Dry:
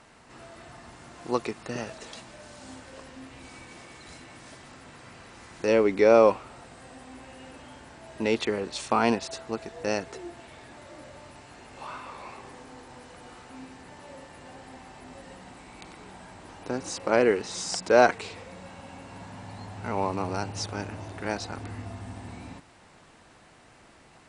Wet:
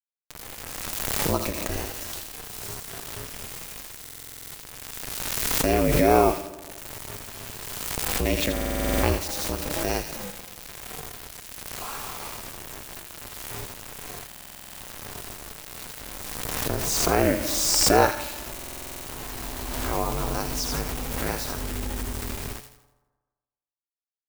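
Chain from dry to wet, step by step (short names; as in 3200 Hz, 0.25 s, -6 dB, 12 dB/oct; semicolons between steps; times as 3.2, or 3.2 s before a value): in parallel at -2 dB: compressor, threshold -39 dBFS, peak gain reduction 24 dB; on the sum: requantised 6-bit, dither none; high shelf 8600 Hz +11.5 dB; FDN reverb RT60 1.3 s, low-frequency decay 0.8×, high-frequency decay 0.3×, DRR 12.5 dB; ring modulator 150 Hz; low shelf 100 Hz +10.5 dB; on a send: thin delay 82 ms, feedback 41%, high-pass 2200 Hz, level -5.5 dB; on the sum: stuck buffer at 4.01/8.52/14.27/18.54, samples 2048, times 10; backwards sustainer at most 22 dB/s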